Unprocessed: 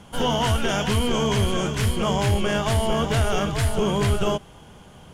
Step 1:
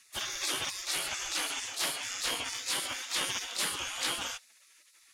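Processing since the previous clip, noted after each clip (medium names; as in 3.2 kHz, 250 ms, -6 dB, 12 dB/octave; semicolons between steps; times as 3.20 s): spectral gate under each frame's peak -25 dB weak; dynamic bell 4.1 kHz, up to +5 dB, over -49 dBFS, Q 1.3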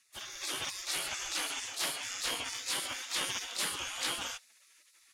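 level rider gain up to 7 dB; trim -9 dB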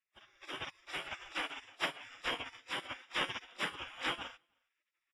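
Savitzky-Golay filter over 25 samples; delay 312 ms -21.5 dB; upward expansion 2.5:1, over -50 dBFS; trim +5 dB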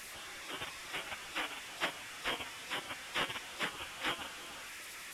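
one-bit delta coder 64 kbps, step -41 dBFS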